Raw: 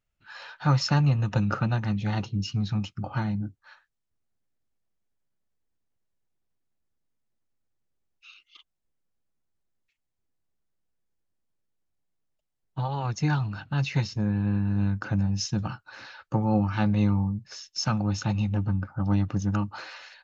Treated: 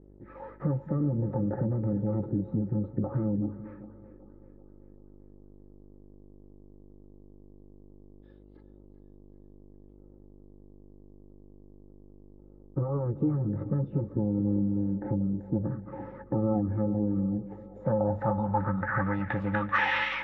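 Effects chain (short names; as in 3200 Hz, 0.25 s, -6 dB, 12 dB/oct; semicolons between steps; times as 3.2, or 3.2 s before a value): G.711 law mismatch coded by mu; high shelf 4800 Hz -6 dB; in parallel at +2 dB: limiter -21.5 dBFS, peak gain reduction 11.5 dB; on the sum: compressor, threshold -29 dBFS, peak gain reduction 14 dB; small resonant body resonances 540/860/1300 Hz, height 17 dB, ringing for 70 ms; formant shift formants +5 st; buzz 50 Hz, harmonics 23, -55 dBFS -5 dB/oct; on a send: split-band echo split 320 Hz, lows 0.215 s, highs 0.387 s, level -14.5 dB; on the sum: low-pass sweep 360 Hz -> 2700 Hz, 17.59–19.38; air absorption 110 m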